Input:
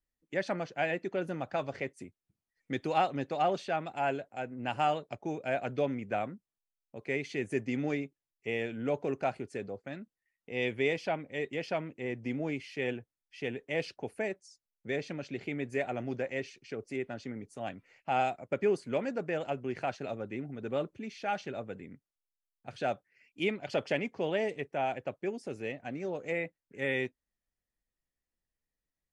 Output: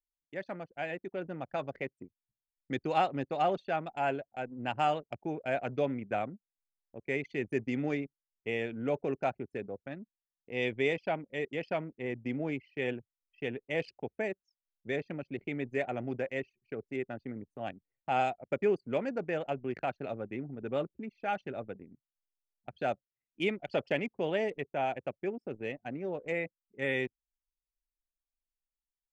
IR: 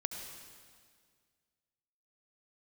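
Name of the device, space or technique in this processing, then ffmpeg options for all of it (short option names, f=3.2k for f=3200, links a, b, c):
voice memo with heavy noise removal: -af "anlmdn=0.251,dynaudnorm=f=570:g=5:m=7dB,volume=-7dB"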